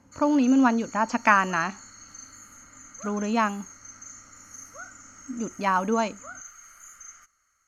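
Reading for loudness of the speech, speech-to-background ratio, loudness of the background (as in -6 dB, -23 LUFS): -24.0 LUFS, 19.5 dB, -43.5 LUFS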